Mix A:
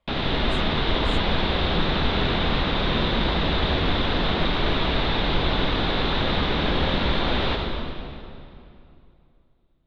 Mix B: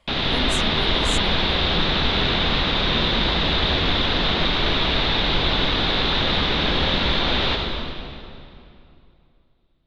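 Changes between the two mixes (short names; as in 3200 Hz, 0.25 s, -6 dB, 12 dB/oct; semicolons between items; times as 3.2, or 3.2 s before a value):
speech +11.0 dB; master: add high shelf 2700 Hz +10.5 dB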